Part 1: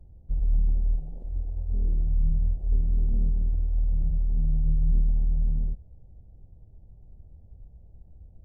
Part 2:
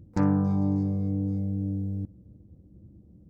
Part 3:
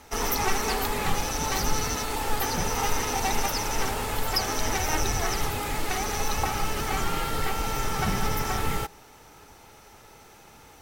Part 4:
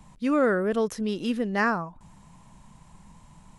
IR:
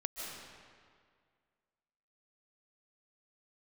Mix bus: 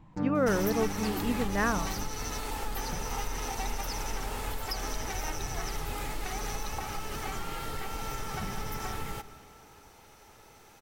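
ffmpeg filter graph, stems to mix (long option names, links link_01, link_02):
-filter_complex "[0:a]acompressor=threshold=-27dB:ratio=6,adelay=950,volume=-9.5dB[link_01];[1:a]aecho=1:1:6.6:0.65,volume=-11dB[link_02];[2:a]acompressor=threshold=-28dB:ratio=3,adelay=350,volume=-6dB,asplit=2[link_03][link_04];[link_04]volume=-13dB[link_05];[3:a]lowpass=2800,volume=-4.5dB[link_06];[4:a]atrim=start_sample=2205[link_07];[link_05][link_07]afir=irnorm=-1:irlink=0[link_08];[link_01][link_02][link_03][link_06][link_08]amix=inputs=5:normalize=0"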